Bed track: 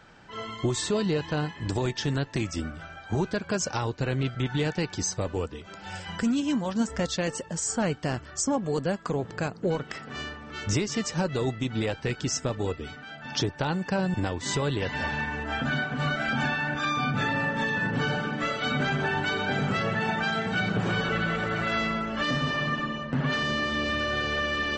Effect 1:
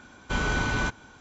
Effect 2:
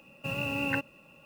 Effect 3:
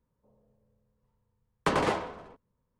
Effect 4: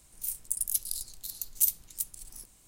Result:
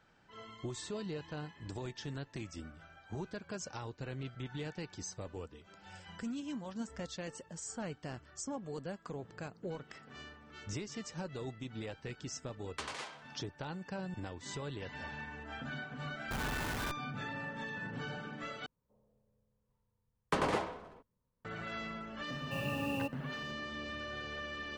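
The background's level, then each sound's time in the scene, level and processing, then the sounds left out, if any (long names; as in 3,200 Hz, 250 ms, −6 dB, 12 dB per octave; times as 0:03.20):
bed track −14.5 dB
0:11.12: mix in 3 −16.5 dB + meter weighting curve ITU-R 468
0:16.01: mix in 1 −9 dB + comparator with hysteresis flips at −33.5 dBFS
0:18.66: overwrite with 3 −5.5 dB
0:22.27: mix in 2 −3.5 dB + flat-topped bell 1,700 Hz −14 dB 1.3 octaves
not used: 4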